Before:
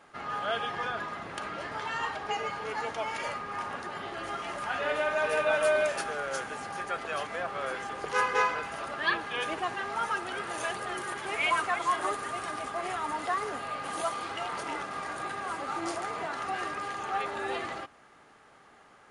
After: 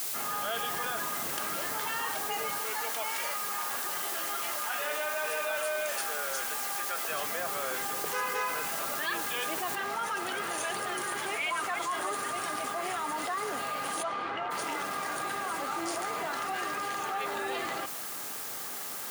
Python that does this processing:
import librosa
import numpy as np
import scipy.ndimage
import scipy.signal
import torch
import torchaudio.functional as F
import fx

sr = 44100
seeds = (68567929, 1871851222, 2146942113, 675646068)

y = fx.highpass(x, sr, hz=620.0, slope=6, at=(2.58, 7.1))
y = fx.noise_floor_step(y, sr, seeds[0], at_s=9.75, before_db=-44, after_db=-57, tilt_db=0.0)
y = fx.lowpass(y, sr, hz=fx.line((14.02, 3200.0), (14.5, 1800.0)), slope=12, at=(14.02, 14.5), fade=0.02)
y = scipy.signal.sosfilt(scipy.signal.butter(2, 130.0, 'highpass', fs=sr, output='sos'), y)
y = fx.high_shelf(y, sr, hz=4800.0, db=8.5)
y = fx.env_flatten(y, sr, amount_pct=70)
y = y * librosa.db_to_amplitude(-8.0)